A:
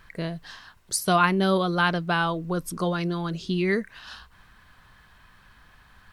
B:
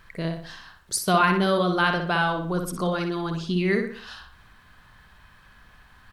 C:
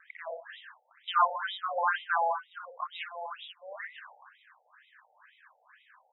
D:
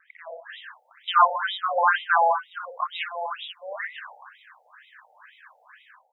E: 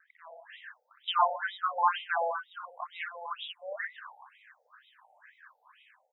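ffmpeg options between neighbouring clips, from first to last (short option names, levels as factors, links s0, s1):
-filter_complex "[0:a]asplit=2[s0][s1];[s1]adelay=61,lowpass=f=4400:p=1,volume=0.562,asplit=2[s2][s3];[s3]adelay=61,lowpass=f=4400:p=1,volume=0.43,asplit=2[s4][s5];[s5]adelay=61,lowpass=f=4400:p=1,volume=0.43,asplit=2[s6][s7];[s7]adelay=61,lowpass=f=4400:p=1,volume=0.43,asplit=2[s8][s9];[s9]adelay=61,lowpass=f=4400:p=1,volume=0.43[s10];[s0][s2][s4][s6][s8][s10]amix=inputs=6:normalize=0"
-af "afftfilt=real='re*between(b*sr/1024,610*pow(2800/610,0.5+0.5*sin(2*PI*2.1*pts/sr))/1.41,610*pow(2800/610,0.5+0.5*sin(2*PI*2.1*pts/sr))*1.41)':imag='im*between(b*sr/1024,610*pow(2800/610,0.5+0.5*sin(2*PI*2.1*pts/sr))/1.41,610*pow(2800/610,0.5+0.5*sin(2*PI*2.1*pts/sr))*1.41)':win_size=1024:overlap=0.75"
-af "dynaudnorm=f=310:g=3:m=3.55,volume=0.75"
-af "afftfilt=real='re*pow(10,13/40*sin(2*PI*(0.56*log(max(b,1)*sr/1024/100)/log(2)-(-1.3)*(pts-256)/sr)))':imag='im*pow(10,13/40*sin(2*PI*(0.56*log(max(b,1)*sr/1024/100)/log(2)-(-1.3)*(pts-256)/sr)))':win_size=1024:overlap=0.75,volume=0.355"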